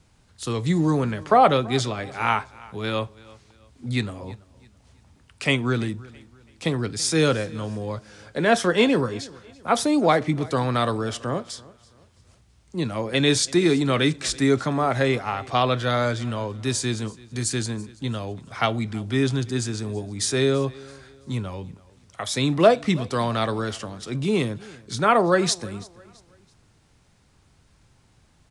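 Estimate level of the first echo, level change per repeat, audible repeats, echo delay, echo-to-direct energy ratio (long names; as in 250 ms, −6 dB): −22.0 dB, −9.0 dB, 2, 332 ms, −21.5 dB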